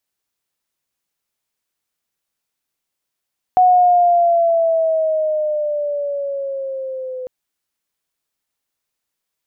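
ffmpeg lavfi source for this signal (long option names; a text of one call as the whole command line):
ffmpeg -f lavfi -i "aevalsrc='pow(10,(-7.5-17*t/3.7)/20)*sin(2*PI*737*3.7/(-6.5*log(2)/12)*(exp(-6.5*log(2)/12*t/3.7)-1))':duration=3.7:sample_rate=44100" out.wav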